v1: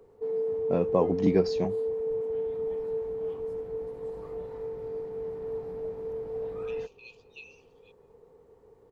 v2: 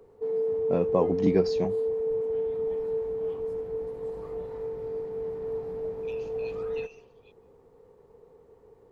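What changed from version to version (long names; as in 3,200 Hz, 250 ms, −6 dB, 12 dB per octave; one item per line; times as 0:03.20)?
second voice: entry −0.60 s
background: send on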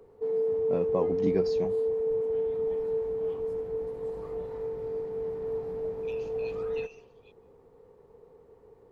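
first voice −5.0 dB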